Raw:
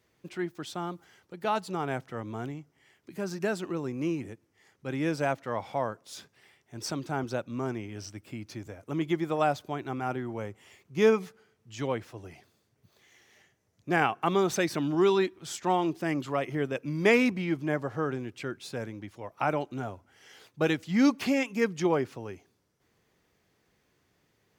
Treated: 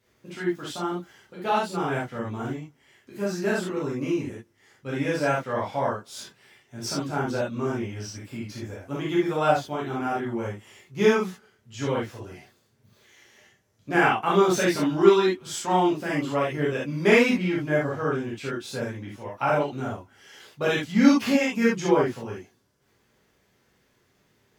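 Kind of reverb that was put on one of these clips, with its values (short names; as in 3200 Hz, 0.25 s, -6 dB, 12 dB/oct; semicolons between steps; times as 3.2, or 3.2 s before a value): non-linear reverb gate 0.1 s flat, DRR -7 dB; gain -2.5 dB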